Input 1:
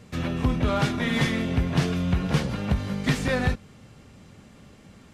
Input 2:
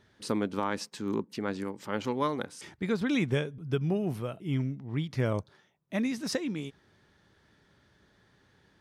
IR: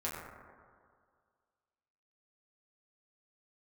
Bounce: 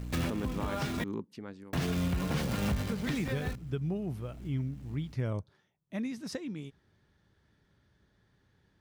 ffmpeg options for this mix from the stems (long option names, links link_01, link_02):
-filter_complex "[0:a]acrusher=bits=7:dc=4:mix=0:aa=0.000001,aeval=exprs='val(0)+0.0112*(sin(2*PI*60*n/s)+sin(2*PI*2*60*n/s)/2+sin(2*PI*3*60*n/s)/3+sin(2*PI*4*60*n/s)/4+sin(2*PI*5*60*n/s)/5)':channel_layout=same,volume=1.5dB,asplit=3[link_01][link_02][link_03];[link_01]atrim=end=1.04,asetpts=PTS-STARTPTS,afade=type=out:start_time=1.036:duration=0.004:curve=hsin[link_04];[link_02]atrim=start=1.04:end=1.73,asetpts=PTS-STARTPTS,volume=0[link_05];[link_03]atrim=start=1.73,asetpts=PTS-STARTPTS,afade=type=in:duration=0.004:curve=hsin[link_06];[link_04][link_05][link_06]concat=n=3:v=0:a=1[link_07];[1:a]lowshelf=frequency=160:gain=10.5,afade=type=out:start_time=1.17:duration=0.42:silence=0.375837,afade=type=in:start_time=2.76:duration=0.34:silence=0.375837,asplit=2[link_08][link_09];[link_09]apad=whole_len=226281[link_10];[link_07][link_10]sidechaincompress=threshold=-42dB:ratio=8:attack=8.4:release=680[link_11];[link_11][link_08]amix=inputs=2:normalize=0,alimiter=limit=-23dB:level=0:latency=1:release=87"